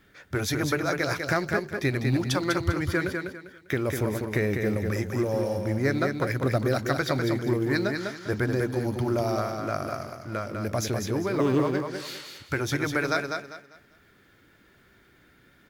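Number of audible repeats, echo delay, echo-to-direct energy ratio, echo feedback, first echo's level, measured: 3, 199 ms, −4.5 dB, 28%, −5.0 dB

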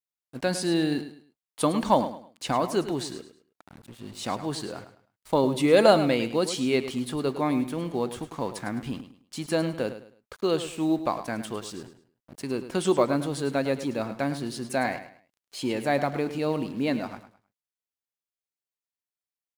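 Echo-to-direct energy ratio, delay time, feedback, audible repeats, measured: −11.5 dB, 105 ms, 29%, 3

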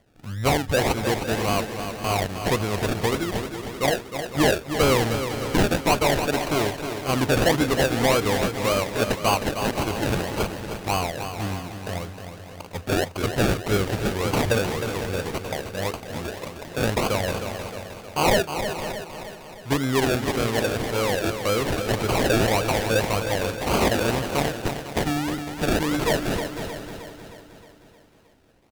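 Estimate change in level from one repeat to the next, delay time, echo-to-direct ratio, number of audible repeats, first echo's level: repeats not evenly spaced, 311 ms, −6.0 dB, 11, −8.5 dB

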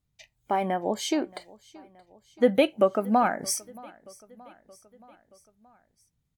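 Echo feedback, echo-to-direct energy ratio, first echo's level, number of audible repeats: 59%, −21.5 dB, −23.5 dB, 3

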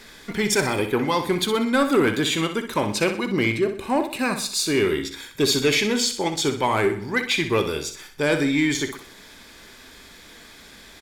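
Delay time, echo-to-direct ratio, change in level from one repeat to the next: 62 ms, −8.5 dB, −7.5 dB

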